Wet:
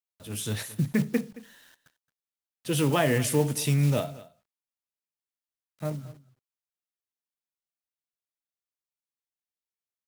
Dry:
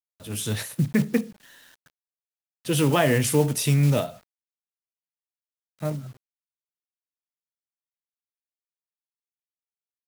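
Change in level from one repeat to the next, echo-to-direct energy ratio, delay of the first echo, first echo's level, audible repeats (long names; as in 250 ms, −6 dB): repeats not evenly spaced, −19.0 dB, 221 ms, −19.0 dB, 1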